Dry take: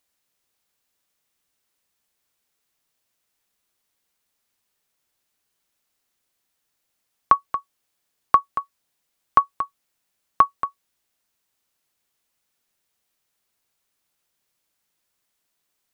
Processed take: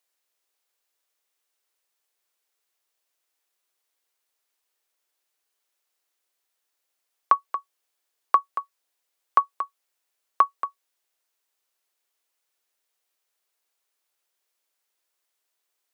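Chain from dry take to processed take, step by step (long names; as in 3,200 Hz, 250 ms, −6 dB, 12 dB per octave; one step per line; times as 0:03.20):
high-pass filter 350 Hz 24 dB per octave
level −3 dB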